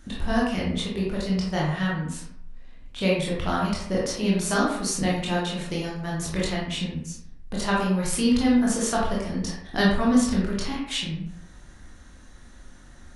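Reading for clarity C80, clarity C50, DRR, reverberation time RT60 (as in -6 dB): 5.0 dB, 1.5 dB, -5.0 dB, 0.75 s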